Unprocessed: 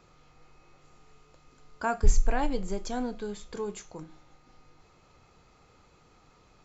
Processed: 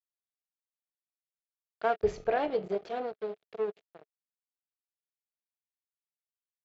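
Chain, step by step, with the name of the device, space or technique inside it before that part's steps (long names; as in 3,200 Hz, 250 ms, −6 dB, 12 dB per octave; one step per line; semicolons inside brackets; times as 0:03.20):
blown loudspeaker (dead-zone distortion −36 dBFS; loudspeaker in its box 170–3,900 Hz, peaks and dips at 250 Hz −9 dB, 430 Hz +10 dB, 650 Hz +8 dB, 1,000 Hz −5 dB)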